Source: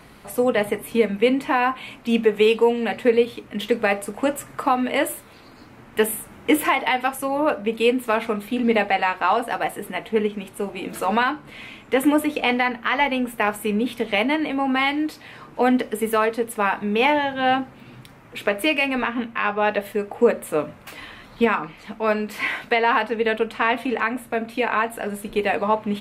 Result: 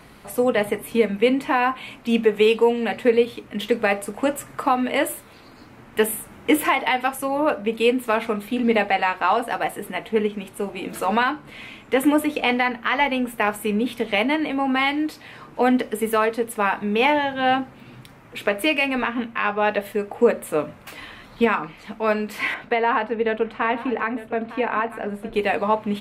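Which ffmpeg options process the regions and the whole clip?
ffmpeg -i in.wav -filter_complex "[0:a]asettb=1/sr,asplit=3[link_01][link_02][link_03];[link_01]atrim=end=22.544[link_04];[link_02]atrim=start=22.54:end=25.34,asetpts=PTS-STARTPTS,afade=type=in:duration=0.004:curve=qsin,afade=type=out:start_time=2.796:duration=0.004:curve=qsin,lowpass=frequency=1600:poles=1,aecho=1:1:906:0.168,atrim=end_sample=123480[link_05];[link_03]atrim=start=25.336[link_06];[link_04][link_05]acrossfade=duration=0.004:curve1=hsin:curve2=qsin[link_07];[link_07][link_06]acrossfade=duration=0.004:curve1=qsin:curve2=hsin" out.wav

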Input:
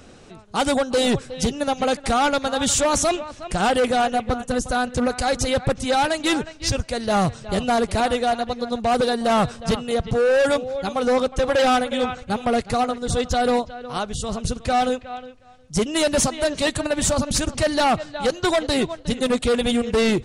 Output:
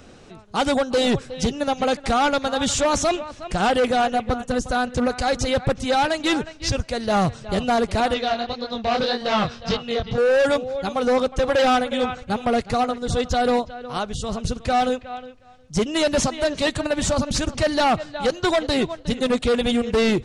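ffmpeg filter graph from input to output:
ffmpeg -i in.wav -filter_complex "[0:a]asettb=1/sr,asplit=3[link_01][link_02][link_03];[link_01]atrim=end=8.144[link_04];[link_02]atrim=start=8.14:end=10.18,asetpts=PTS-STARTPTS,afade=type=in:duration=0.004:curve=qsin,afade=type=out:start_time=2.036:duration=0.004:curve=qsin,lowpass=frequency=5000:width=0.5412,lowpass=frequency=5000:width=1.3066,highshelf=frequency=2700:gain=11,flanger=delay=19:depth=6.7:speed=1.8[link_05];[link_03]atrim=start=10.176[link_06];[link_04][link_05]acrossfade=duration=0.004:curve1=hsin:curve2=qsin[link_07];[link_07][link_06]acrossfade=duration=0.004:curve1=qsin:curve2=hsin,acrossover=split=8800[link_08][link_09];[link_09]acompressor=threshold=-46dB:ratio=4:attack=1:release=60[link_10];[link_08][link_10]amix=inputs=2:normalize=0,equalizer=frequency=9400:width=1.4:gain=-4.5" out.wav

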